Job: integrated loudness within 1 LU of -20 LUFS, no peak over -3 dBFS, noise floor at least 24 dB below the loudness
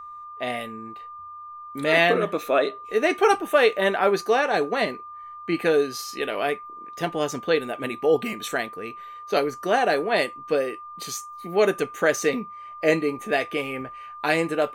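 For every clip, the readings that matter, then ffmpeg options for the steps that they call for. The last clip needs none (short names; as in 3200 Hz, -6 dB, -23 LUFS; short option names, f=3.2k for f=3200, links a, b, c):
steady tone 1200 Hz; tone level -37 dBFS; loudness -24.0 LUFS; peak -5.0 dBFS; loudness target -20.0 LUFS
-> -af "bandreject=f=1.2k:w=30"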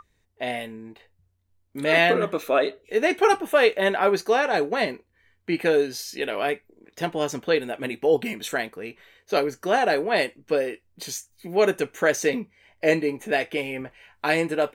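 steady tone none; loudness -24.0 LUFS; peak -5.0 dBFS; loudness target -20.0 LUFS
-> -af "volume=4dB,alimiter=limit=-3dB:level=0:latency=1"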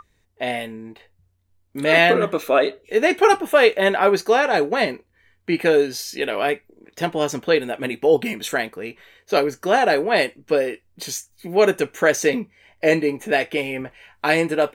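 loudness -20.0 LUFS; peak -3.0 dBFS; noise floor -65 dBFS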